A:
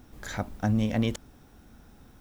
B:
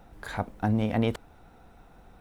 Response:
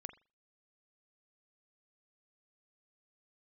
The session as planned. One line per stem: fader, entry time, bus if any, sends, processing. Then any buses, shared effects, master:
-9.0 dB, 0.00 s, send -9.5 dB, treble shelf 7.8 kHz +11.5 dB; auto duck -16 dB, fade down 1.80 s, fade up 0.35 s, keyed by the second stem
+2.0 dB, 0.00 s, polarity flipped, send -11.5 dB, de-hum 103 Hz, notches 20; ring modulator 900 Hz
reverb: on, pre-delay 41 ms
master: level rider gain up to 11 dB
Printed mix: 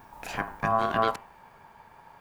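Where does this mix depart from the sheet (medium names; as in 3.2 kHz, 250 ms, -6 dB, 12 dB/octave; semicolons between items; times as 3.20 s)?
stem B: polarity flipped; master: missing level rider gain up to 11 dB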